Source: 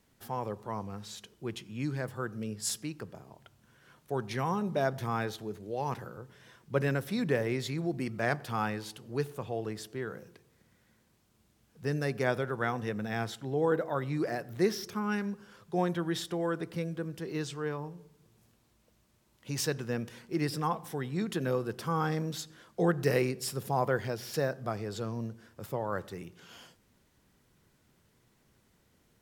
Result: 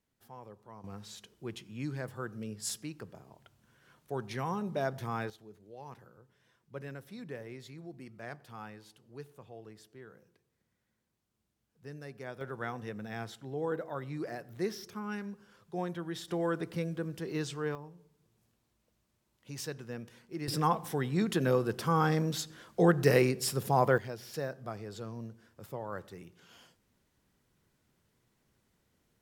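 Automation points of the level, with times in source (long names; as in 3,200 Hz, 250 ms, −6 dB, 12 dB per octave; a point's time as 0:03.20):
−14 dB
from 0:00.84 −3.5 dB
from 0:05.30 −14 dB
from 0:12.41 −6.5 dB
from 0:16.28 0 dB
from 0:17.75 −8 dB
from 0:20.48 +3 dB
from 0:23.98 −6 dB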